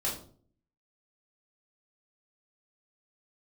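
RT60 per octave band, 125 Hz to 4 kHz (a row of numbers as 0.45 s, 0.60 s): 0.75 s, 0.70 s, 0.55 s, 0.45 s, 0.30 s, 0.35 s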